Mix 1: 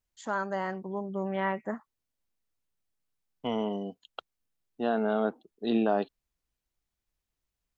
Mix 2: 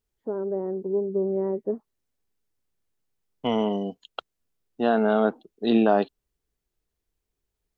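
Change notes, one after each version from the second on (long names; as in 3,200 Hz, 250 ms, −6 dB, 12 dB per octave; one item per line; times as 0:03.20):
first voice: add low-pass with resonance 420 Hz, resonance Q 4.8
second voice +6.5 dB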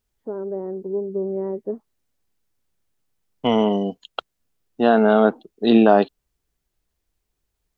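second voice +6.0 dB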